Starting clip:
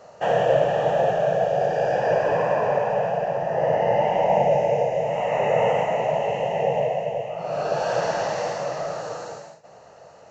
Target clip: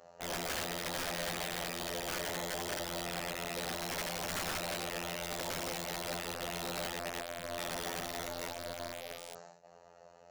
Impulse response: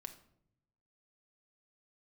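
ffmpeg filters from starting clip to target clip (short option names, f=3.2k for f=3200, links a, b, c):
-af "afftfilt=real='hypot(re,im)*cos(PI*b)':imag='0':win_size=2048:overlap=0.75,aeval=exprs='(mod(15*val(0)+1,2)-1)/15':c=same,volume=-8dB"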